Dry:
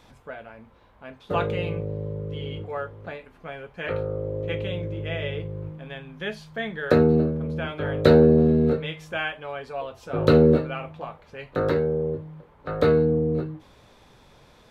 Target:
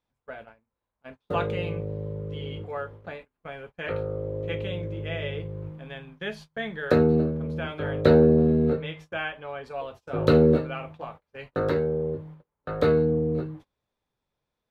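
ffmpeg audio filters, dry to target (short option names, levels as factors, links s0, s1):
-filter_complex "[0:a]asettb=1/sr,asplit=3[s0][s1][s2];[s0]atrim=end=8.014[s3];[s1]atrim=start=8.01:end=9.66,asetpts=PTS-STARTPTS,afade=t=in:d=0.004:c=qsin,afade=t=out:st=1.646:d=0.004:c=qsin,highshelf=f=4400:g=-8[s4];[s2]atrim=start=9.656[s5];[s3][s4]acrossfade=d=0.004:c1=hsin:c2=qsin[s6];[s6][s5]acrossfade=d=0.004:c1=qsin:c2=hsin,agate=range=0.0398:threshold=0.00891:ratio=16:detection=peak,volume=0.794"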